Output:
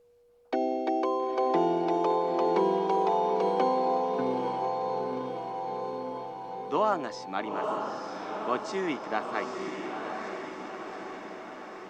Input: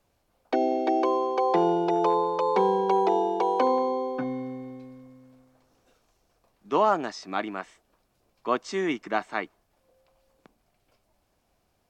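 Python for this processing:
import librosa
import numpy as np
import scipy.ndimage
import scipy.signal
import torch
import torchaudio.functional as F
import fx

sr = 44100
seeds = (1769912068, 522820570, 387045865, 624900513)

y = fx.echo_diffused(x, sr, ms=906, feedback_pct=65, wet_db=-4)
y = y + 10.0 ** (-55.0 / 20.0) * np.sin(2.0 * np.pi * 480.0 * np.arange(len(y)) / sr)
y = y * librosa.db_to_amplitude(-4.0)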